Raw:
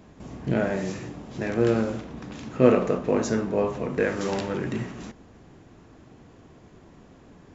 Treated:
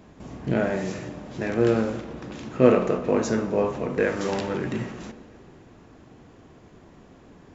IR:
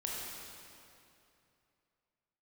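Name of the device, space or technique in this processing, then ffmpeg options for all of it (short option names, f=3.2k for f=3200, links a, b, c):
filtered reverb send: -filter_complex "[0:a]asplit=2[a][b];[b]highpass=190,lowpass=5.5k[c];[1:a]atrim=start_sample=2205[d];[c][d]afir=irnorm=-1:irlink=0,volume=-14dB[e];[a][e]amix=inputs=2:normalize=0"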